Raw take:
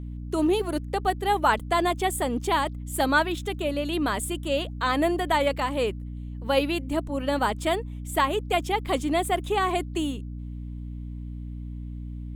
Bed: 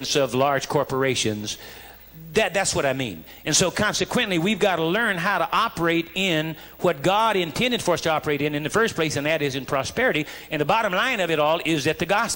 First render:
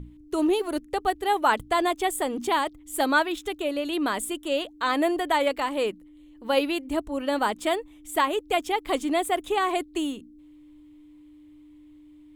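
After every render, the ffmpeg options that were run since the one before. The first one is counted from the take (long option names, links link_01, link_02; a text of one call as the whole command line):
ffmpeg -i in.wav -af "bandreject=frequency=60:width_type=h:width=6,bandreject=frequency=120:width_type=h:width=6,bandreject=frequency=180:width_type=h:width=6,bandreject=frequency=240:width_type=h:width=6" out.wav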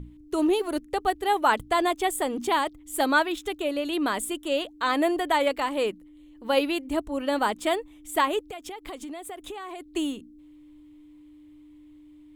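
ffmpeg -i in.wav -filter_complex "[0:a]asettb=1/sr,asplit=3[link_01][link_02][link_03];[link_01]atrim=end=8.504[link_04];[link_02]atrim=start=8.5:end=9.94,asetpts=PTS-STARTPTS,afade=type=in:duration=0.004:curve=qsin,afade=type=out:start_time=1.436:duration=0.004:curve=qsin,acompressor=threshold=-34dB:ratio=12:attack=3.2:release=140:knee=1:detection=peak[link_05];[link_03]atrim=start=9.936[link_06];[link_04][link_05]acrossfade=duration=0.004:curve1=hsin:curve2=qsin[link_07];[link_07][link_06]acrossfade=duration=0.004:curve1=qsin:curve2=hsin" out.wav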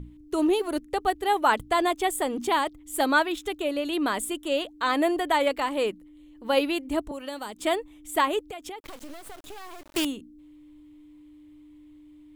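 ffmpeg -i in.wav -filter_complex "[0:a]asettb=1/sr,asplit=3[link_01][link_02][link_03];[link_01]atrim=end=7.114[link_04];[link_02]atrim=start=7.11:end=7.6,asetpts=PTS-STARTPTS,afade=type=in:duration=0.004:curve=qsin,afade=type=out:start_time=0.486:duration=0.004:curve=qsin,acrossover=split=480|3600[link_05][link_06][link_07];[link_05]acompressor=threshold=-42dB:ratio=4[link_08];[link_06]acompressor=threshold=-38dB:ratio=4[link_09];[link_07]acompressor=threshold=-43dB:ratio=4[link_10];[link_08][link_09][link_10]amix=inputs=3:normalize=0[link_11];[link_03]atrim=start=7.596[link_12];[link_04][link_11]acrossfade=duration=0.004:curve1=hsin:curve2=qsin[link_13];[link_13][link_12]acrossfade=duration=0.004:curve1=qsin:curve2=hsin,asettb=1/sr,asplit=3[link_14][link_15][link_16];[link_14]atrim=end=8.804[link_17];[link_15]atrim=start=8.8:end=10.05,asetpts=PTS-STARTPTS,afade=type=in:duration=0.004:curve=qsin,afade=type=out:start_time=1.246:duration=0.004:curve=qsin,acrusher=bits=5:dc=4:mix=0:aa=0.000001[link_18];[link_16]atrim=start=10.046[link_19];[link_17][link_18]acrossfade=duration=0.004:curve1=hsin:curve2=qsin[link_20];[link_20][link_19]acrossfade=duration=0.004:curve1=qsin:curve2=hsin" out.wav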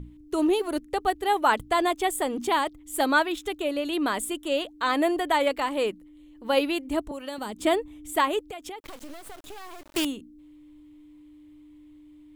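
ffmpeg -i in.wav -filter_complex "[0:a]asettb=1/sr,asplit=3[link_01][link_02][link_03];[link_01]atrim=end=7.384[link_04];[link_02]atrim=start=7.38:end=8.13,asetpts=PTS-STARTPTS,afade=type=in:duration=0.004:curve=qsin,afade=type=out:start_time=0.746:duration=0.004:curve=qsin,equalizer=frequency=110:width=0.36:gain=9.5[link_05];[link_03]atrim=start=8.126[link_06];[link_04][link_05]acrossfade=duration=0.004:curve1=hsin:curve2=qsin[link_07];[link_07][link_06]acrossfade=duration=0.004:curve1=qsin:curve2=hsin" out.wav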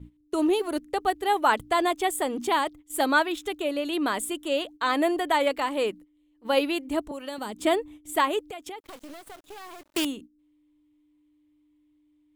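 ffmpeg -i in.wav -af "agate=range=-14dB:threshold=-42dB:ratio=16:detection=peak,lowshelf=frequency=68:gain=-9" out.wav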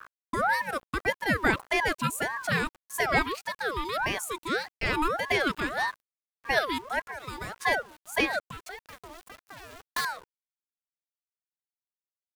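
ffmpeg -i in.wav -af "aeval=exprs='val(0)*gte(abs(val(0)),0.00596)':channel_layout=same,aeval=exprs='val(0)*sin(2*PI*1000*n/s+1000*0.4/1.7*sin(2*PI*1.7*n/s))':channel_layout=same" out.wav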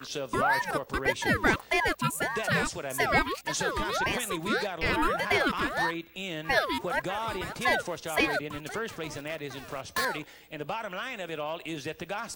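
ffmpeg -i in.wav -i bed.wav -filter_complex "[1:a]volume=-14dB[link_01];[0:a][link_01]amix=inputs=2:normalize=0" out.wav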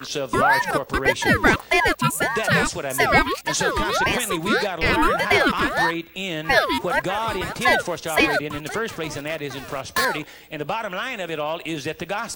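ffmpeg -i in.wav -af "volume=8dB,alimiter=limit=-3dB:level=0:latency=1" out.wav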